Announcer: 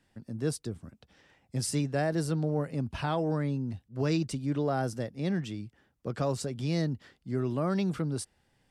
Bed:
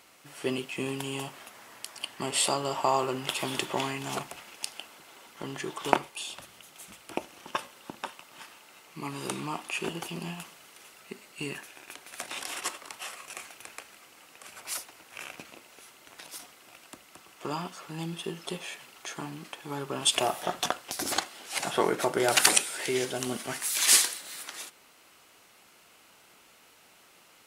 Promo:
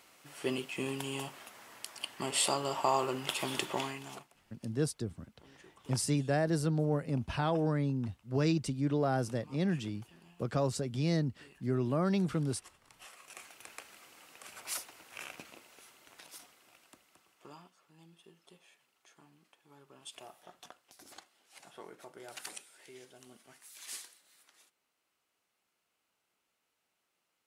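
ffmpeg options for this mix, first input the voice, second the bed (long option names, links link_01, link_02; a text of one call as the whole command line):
ffmpeg -i stem1.wav -i stem2.wav -filter_complex "[0:a]adelay=4350,volume=-1dB[link_01];[1:a]volume=16.5dB,afade=type=out:start_time=3.69:duration=0.59:silence=0.105925,afade=type=in:start_time=12.81:duration=1.15:silence=0.1,afade=type=out:start_time=15.06:duration=2.68:silence=0.0891251[link_02];[link_01][link_02]amix=inputs=2:normalize=0" out.wav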